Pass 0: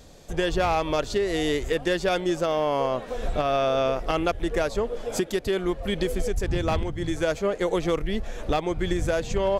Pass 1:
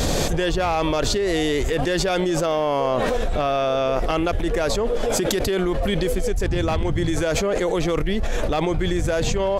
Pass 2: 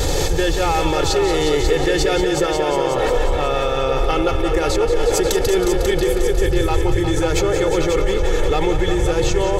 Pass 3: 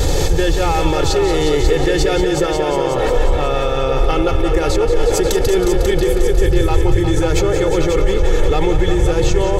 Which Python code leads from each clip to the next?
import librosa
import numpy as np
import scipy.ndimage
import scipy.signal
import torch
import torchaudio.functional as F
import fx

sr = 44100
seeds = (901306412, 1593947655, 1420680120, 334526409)

y1 = fx.env_flatten(x, sr, amount_pct=100)
y2 = y1 + 0.74 * np.pad(y1, (int(2.3 * sr / 1000.0), 0))[:len(y1)]
y2 = fx.echo_heads(y2, sr, ms=180, heads='all three', feedback_pct=48, wet_db=-10.0)
y3 = fx.low_shelf(y2, sr, hz=320.0, db=5.0)